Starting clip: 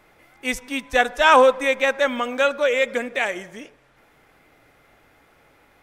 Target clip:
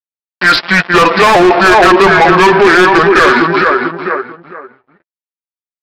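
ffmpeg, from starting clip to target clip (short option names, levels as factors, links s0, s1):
-filter_complex "[0:a]aresample=16000,aeval=exprs='sgn(val(0))*max(abs(val(0))-0.00944,0)':c=same,aresample=44100,asplit=2[s0][s1];[s1]adelay=447,lowpass=f=2700:p=1,volume=0.316,asplit=2[s2][s3];[s3]adelay=447,lowpass=f=2700:p=1,volume=0.26,asplit=2[s4][s5];[s5]adelay=447,lowpass=f=2700:p=1,volume=0.26[s6];[s0][s2][s4][s6]amix=inputs=4:normalize=0,flanger=delay=6.8:depth=1.3:regen=20:speed=1.9:shape=triangular,asetrate=30296,aresample=44100,atempo=1.45565,asplit=2[s7][s8];[s8]highpass=f=720:p=1,volume=35.5,asoftclip=type=tanh:threshold=0.668[s9];[s7][s9]amix=inputs=2:normalize=0,lowpass=f=3900:p=1,volume=0.501,alimiter=level_in=5.96:limit=0.891:release=50:level=0:latency=1,volume=0.891"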